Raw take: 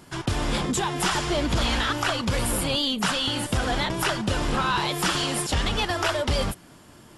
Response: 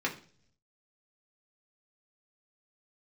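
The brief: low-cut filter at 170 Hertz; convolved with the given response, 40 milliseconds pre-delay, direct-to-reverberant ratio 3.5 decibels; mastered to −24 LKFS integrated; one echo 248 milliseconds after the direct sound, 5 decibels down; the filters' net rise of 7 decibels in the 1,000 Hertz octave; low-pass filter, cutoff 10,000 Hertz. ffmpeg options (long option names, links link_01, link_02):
-filter_complex "[0:a]highpass=170,lowpass=10000,equalizer=frequency=1000:width_type=o:gain=8.5,aecho=1:1:248:0.562,asplit=2[link_01][link_02];[1:a]atrim=start_sample=2205,adelay=40[link_03];[link_02][link_03]afir=irnorm=-1:irlink=0,volume=-11dB[link_04];[link_01][link_04]amix=inputs=2:normalize=0,volume=-3.5dB"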